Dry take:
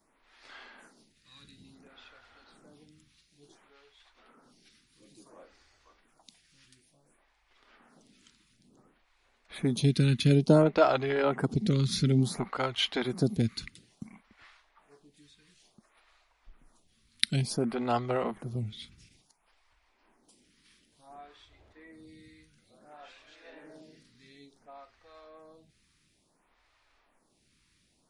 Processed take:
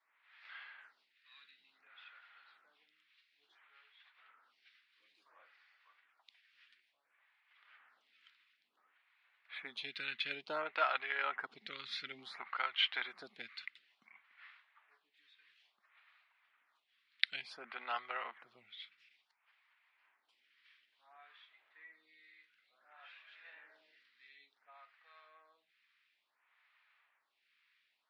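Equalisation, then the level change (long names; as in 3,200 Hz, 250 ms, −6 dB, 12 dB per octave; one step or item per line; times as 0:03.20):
flat-topped band-pass 3,900 Hz, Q 0.54
high-frequency loss of the air 450 metres
parametric band 2,300 Hz +4.5 dB 2.8 octaves
+1.5 dB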